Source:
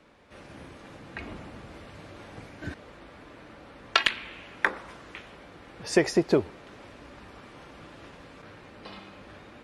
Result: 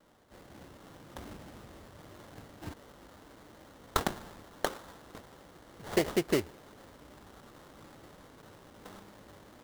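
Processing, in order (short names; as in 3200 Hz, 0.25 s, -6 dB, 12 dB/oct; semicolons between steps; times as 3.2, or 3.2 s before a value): vibrato 2 Hz 66 cents; sample-rate reducer 2500 Hz, jitter 20%; gain -6 dB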